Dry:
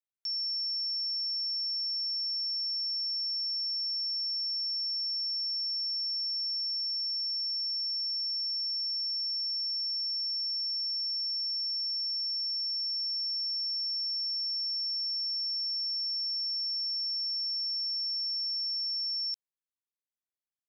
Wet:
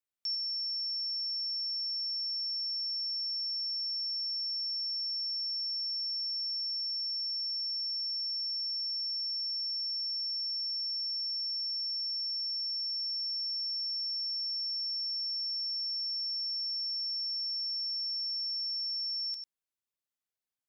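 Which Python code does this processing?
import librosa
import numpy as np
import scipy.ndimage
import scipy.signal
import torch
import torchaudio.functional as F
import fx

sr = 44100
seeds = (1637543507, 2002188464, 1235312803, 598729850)

y = x + 10.0 ** (-9.0 / 20.0) * np.pad(x, (int(97 * sr / 1000.0), 0))[:len(x)]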